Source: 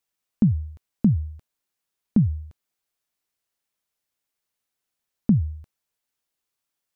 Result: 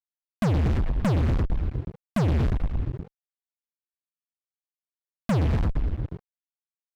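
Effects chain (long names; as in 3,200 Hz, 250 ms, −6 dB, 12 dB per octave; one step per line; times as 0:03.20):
bit-depth reduction 8 bits, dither none
echo with shifted repeats 118 ms, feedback 60%, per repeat −41 Hz, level −13 dB
downward compressor 8 to 1, threshold −28 dBFS, peak gain reduction 14 dB
high-frequency loss of the air 350 metres
fuzz pedal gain 47 dB, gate −54 dBFS
level −7 dB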